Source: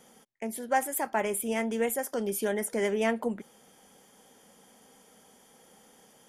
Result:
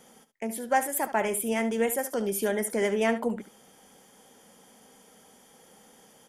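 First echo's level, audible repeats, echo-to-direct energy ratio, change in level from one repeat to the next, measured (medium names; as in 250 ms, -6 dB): -13.0 dB, 1, -13.0 dB, no regular repeats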